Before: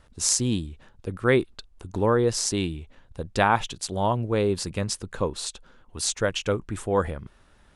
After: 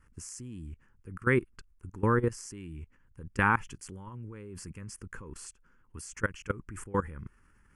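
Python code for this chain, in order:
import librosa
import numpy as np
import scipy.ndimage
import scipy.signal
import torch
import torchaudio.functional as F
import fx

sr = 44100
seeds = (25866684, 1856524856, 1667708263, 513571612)

y = fx.level_steps(x, sr, step_db=21)
y = fx.fixed_phaser(y, sr, hz=1600.0, stages=4)
y = y * 10.0 ** (1.5 / 20.0)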